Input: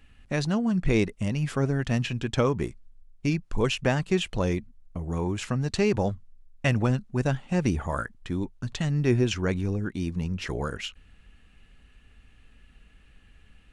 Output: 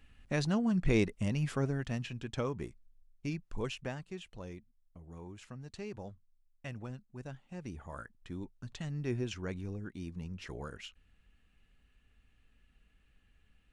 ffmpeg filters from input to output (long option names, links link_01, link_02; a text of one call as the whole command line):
ffmpeg -i in.wav -af "volume=2dB,afade=type=out:start_time=1.39:duration=0.6:silence=0.473151,afade=type=out:start_time=3.57:duration=0.53:silence=0.398107,afade=type=in:start_time=7.64:duration=0.64:silence=0.446684" out.wav